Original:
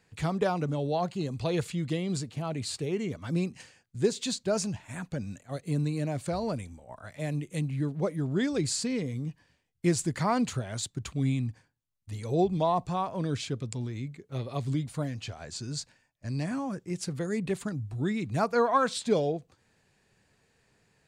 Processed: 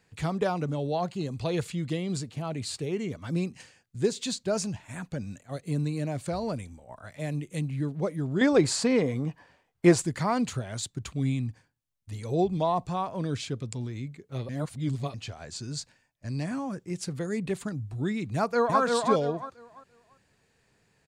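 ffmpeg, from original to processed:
ffmpeg -i in.wav -filter_complex "[0:a]asettb=1/sr,asplit=3[link_01][link_02][link_03];[link_01]atrim=end=8.414[link_04];[link_02]atrim=start=8.41:end=10.02,asetpts=PTS-STARTPTS,afade=type=in:duration=0.004:curve=qsin,afade=type=out:start_time=1.606:duration=0.004:curve=qsin,equalizer=frequency=830:width_type=o:width=2.7:gain=15[link_05];[link_03]atrim=start=10.016[link_06];[link_04][link_05]acrossfade=duration=0.004:curve1=hsin:curve2=qsin[link_07];[link_07][link_06]acrossfade=duration=0.004:curve1=qsin:curve2=hsin,asplit=2[link_08][link_09];[link_09]afade=type=in:start_time=18.35:duration=0.01,afade=type=out:start_time=18.81:duration=0.01,aecho=0:1:340|680|1020|1360:0.749894|0.187474|0.0468684|0.0117171[link_10];[link_08][link_10]amix=inputs=2:normalize=0,asplit=3[link_11][link_12][link_13];[link_11]atrim=end=14.492[link_14];[link_12]atrim=start=14.488:end=15.142,asetpts=PTS-STARTPTS,areverse[link_15];[link_13]atrim=start=15.138[link_16];[link_14][link_15]acrossfade=duration=0.004:curve1=hsin:curve2=hsin[link_17];[link_17][link_16]acrossfade=duration=0.004:curve1=hsin:curve2=hsin" out.wav

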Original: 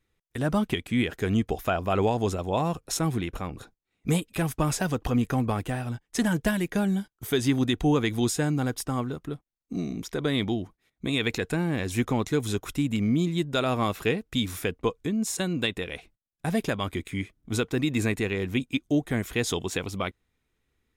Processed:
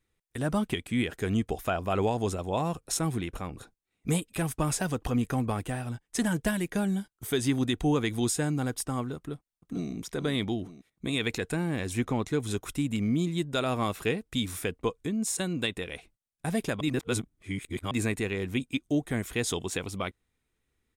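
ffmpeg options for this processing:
ffmpeg -i in.wav -filter_complex "[0:a]asplit=2[link_01][link_02];[link_02]afade=type=in:start_time=9.17:duration=0.01,afade=type=out:start_time=9.91:duration=0.01,aecho=0:1:450|900|1350|1800|2250|2700:0.354813|0.177407|0.0887033|0.0443517|0.0221758|0.0110879[link_03];[link_01][link_03]amix=inputs=2:normalize=0,asettb=1/sr,asplit=3[link_04][link_05][link_06];[link_04]atrim=end=11.934[link_07];[link_05]atrim=start=11.93:end=12.51,asetpts=PTS-STARTPTS,afade=type=in:duration=0.004:curve=qsin,afade=type=out:start_time=0.576:duration=0.004:curve=qsin,highshelf=frequency=5700:gain=-7.5[link_08];[link_06]atrim=start=12.506[link_09];[link_07][link_08]acrossfade=duration=0.004:curve1=hsin:curve2=qsin[link_10];[link_10][link_09]acrossfade=duration=0.004:curve1=qsin:curve2=hsin,asplit=3[link_11][link_12][link_13];[link_11]atrim=end=16.812[link_14];[link_12]atrim=start=16.808:end=17.912,asetpts=PTS-STARTPTS,areverse[link_15];[link_13]atrim=start=17.908[link_16];[link_14][link_15]acrossfade=duration=0.004:curve1=hsin:curve2=hsin[link_17];[link_17][link_16]acrossfade=duration=0.004:curve1=hsin:curve2=hsin,equalizer=frequency=8900:width_type=o:width=0.46:gain=6.5,volume=-3dB" out.wav

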